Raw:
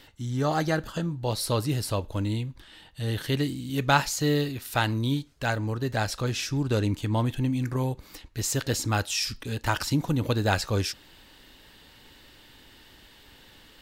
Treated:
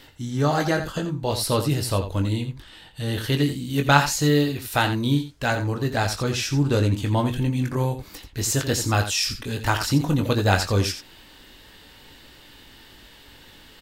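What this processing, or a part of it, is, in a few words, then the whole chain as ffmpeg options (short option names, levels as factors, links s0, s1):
slapback doubling: -filter_complex "[0:a]asplit=3[s0][s1][s2];[s1]adelay=21,volume=0.447[s3];[s2]adelay=86,volume=0.316[s4];[s0][s3][s4]amix=inputs=3:normalize=0,volume=1.5"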